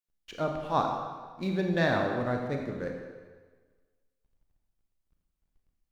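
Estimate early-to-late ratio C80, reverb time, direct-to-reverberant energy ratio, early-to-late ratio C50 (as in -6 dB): 5.0 dB, 1.5 s, 2.0 dB, 3.5 dB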